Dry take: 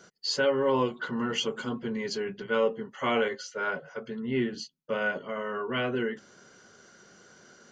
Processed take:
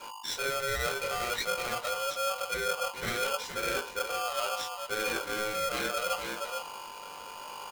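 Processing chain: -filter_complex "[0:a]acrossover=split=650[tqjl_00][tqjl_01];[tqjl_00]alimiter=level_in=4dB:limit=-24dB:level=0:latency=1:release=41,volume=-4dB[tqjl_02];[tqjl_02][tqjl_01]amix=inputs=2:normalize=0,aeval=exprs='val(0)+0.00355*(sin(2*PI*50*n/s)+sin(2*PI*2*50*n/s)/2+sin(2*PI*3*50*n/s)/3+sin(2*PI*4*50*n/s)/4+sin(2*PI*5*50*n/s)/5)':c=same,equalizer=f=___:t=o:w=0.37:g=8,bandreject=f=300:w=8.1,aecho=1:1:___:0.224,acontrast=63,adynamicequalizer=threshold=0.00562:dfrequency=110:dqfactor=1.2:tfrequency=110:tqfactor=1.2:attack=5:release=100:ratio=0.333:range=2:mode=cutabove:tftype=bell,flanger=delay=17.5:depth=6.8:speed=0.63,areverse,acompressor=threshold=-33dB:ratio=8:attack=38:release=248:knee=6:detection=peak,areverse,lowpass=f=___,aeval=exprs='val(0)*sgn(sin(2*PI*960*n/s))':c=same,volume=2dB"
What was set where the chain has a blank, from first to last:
420, 467, 5000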